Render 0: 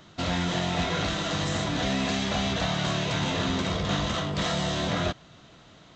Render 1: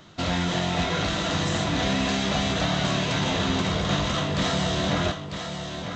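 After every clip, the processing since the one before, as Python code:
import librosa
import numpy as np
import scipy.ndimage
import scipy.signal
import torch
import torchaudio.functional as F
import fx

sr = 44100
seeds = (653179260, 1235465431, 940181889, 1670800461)

y = x + 10.0 ** (-7.5 / 20.0) * np.pad(x, (int(947 * sr / 1000.0), 0))[:len(x)]
y = y * 10.0 ** (2.0 / 20.0)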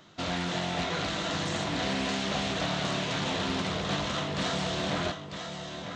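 y = fx.low_shelf(x, sr, hz=99.0, db=-10.5)
y = fx.doppler_dist(y, sr, depth_ms=0.29)
y = y * 10.0 ** (-4.5 / 20.0)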